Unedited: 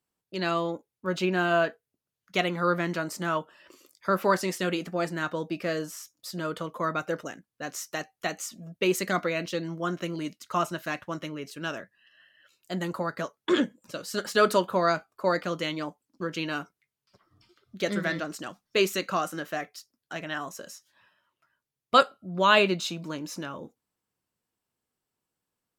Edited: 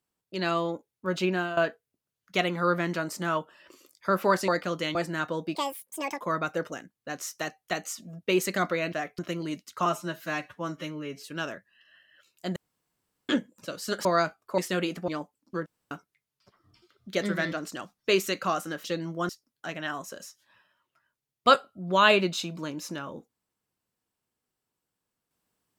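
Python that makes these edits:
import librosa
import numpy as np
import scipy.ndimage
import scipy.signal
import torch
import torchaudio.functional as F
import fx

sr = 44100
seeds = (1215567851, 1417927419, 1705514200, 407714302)

y = fx.edit(x, sr, fx.fade_out_to(start_s=1.3, length_s=0.27, floor_db=-14.5),
    fx.swap(start_s=4.48, length_s=0.5, other_s=15.28, other_length_s=0.47),
    fx.speed_span(start_s=5.58, length_s=1.16, speed=1.77),
    fx.swap(start_s=9.47, length_s=0.45, other_s=19.51, other_length_s=0.25),
    fx.stretch_span(start_s=10.59, length_s=0.95, factor=1.5),
    fx.room_tone_fill(start_s=12.82, length_s=0.73),
    fx.cut(start_s=14.31, length_s=0.44),
    fx.room_tone_fill(start_s=16.33, length_s=0.25), tone=tone)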